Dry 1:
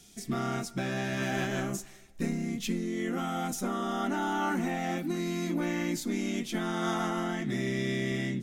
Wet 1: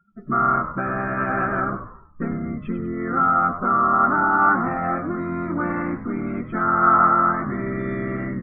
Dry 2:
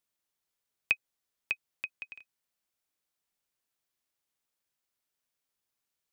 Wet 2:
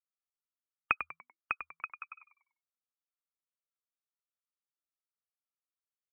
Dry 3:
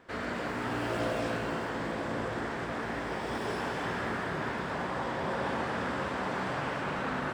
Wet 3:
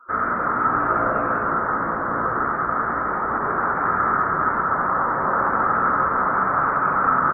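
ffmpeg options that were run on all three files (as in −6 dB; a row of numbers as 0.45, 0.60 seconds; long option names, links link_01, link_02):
-filter_complex "[0:a]lowpass=frequency=1300:width_type=q:width=9.1,afftdn=noise_reduction=31:noise_floor=-46,adynamicequalizer=threshold=0.00251:dfrequency=120:dqfactor=4.3:tfrequency=120:tqfactor=4.3:attack=5:release=100:ratio=0.375:range=1.5:mode=cutabove:tftype=bell,asplit=5[link_01][link_02][link_03][link_04][link_05];[link_02]adelay=97,afreqshift=-83,volume=-10dB[link_06];[link_03]adelay=194,afreqshift=-166,volume=-19.1dB[link_07];[link_04]adelay=291,afreqshift=-249,volume=-28.2dB[link_08];[link_05]adelay=388,afreqshift=-332,volume=-37.4dB[link_09];[link_01][link_06][link_07][link_08][link_09]amix=inputs=5:normalize=0,volume=4.5dB"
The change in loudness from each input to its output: +11.0, −2.0, +13.0 LU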